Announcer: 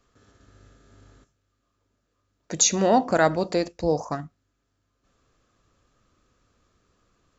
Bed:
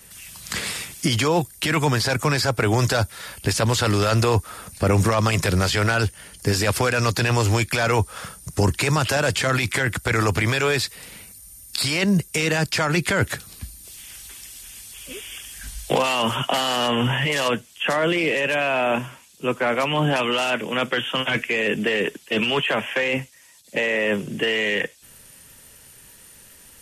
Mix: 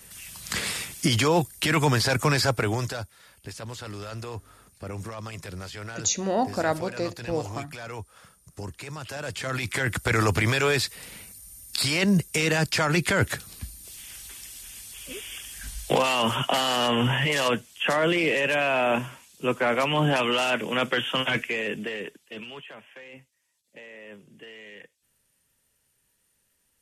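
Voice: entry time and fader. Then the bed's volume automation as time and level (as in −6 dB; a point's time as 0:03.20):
3.45 s, −5.5 dB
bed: 0:02.49 −1.5 dB
0:03.18 −17.5 dB
0:08.95 −17.5 dB
0:09.97 −2 dB
0:21.27 −2 dB
0:22.81 −23 dB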